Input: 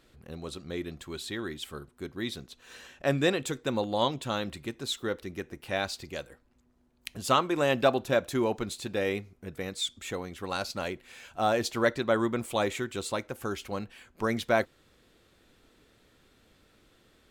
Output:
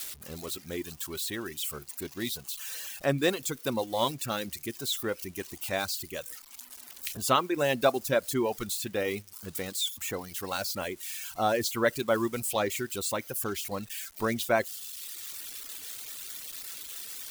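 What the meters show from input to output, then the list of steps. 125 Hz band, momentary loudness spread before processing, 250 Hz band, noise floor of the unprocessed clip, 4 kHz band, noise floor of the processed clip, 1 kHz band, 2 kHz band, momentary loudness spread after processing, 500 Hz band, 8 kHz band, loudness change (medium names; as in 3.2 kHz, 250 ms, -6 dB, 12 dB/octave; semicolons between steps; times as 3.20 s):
-2.0 dB, 15 LU, -1.5 dB, -65 dBFS, +1.0 dB, -51 dBFS, -0.5 dB, -0.5 dB, 11 LU, -0.5 dB, +7.5 dB, -0.5 dB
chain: zero-crossing glitches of -28 dBFS; reverb removal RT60 1.1 s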